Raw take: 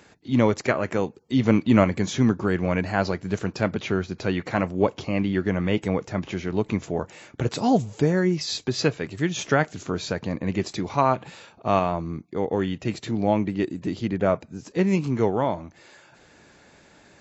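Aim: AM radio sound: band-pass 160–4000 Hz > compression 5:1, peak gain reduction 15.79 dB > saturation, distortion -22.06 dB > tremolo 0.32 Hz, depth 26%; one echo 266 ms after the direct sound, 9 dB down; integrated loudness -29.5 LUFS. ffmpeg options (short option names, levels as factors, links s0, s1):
-af "highpass=160,lowpass=4000,aecho=1:1:266:0.355,acompressor=threshold=0.0316:ratio=5,asoftclip=threshold=0.0891,tremolo=f=0.32:d=0.26,volume=2.24"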